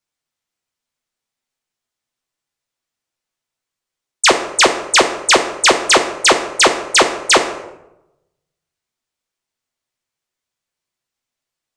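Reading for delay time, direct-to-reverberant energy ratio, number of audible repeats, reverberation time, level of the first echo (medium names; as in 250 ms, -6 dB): no echo, 3.5 dB, no echo, 0.90 s, no echo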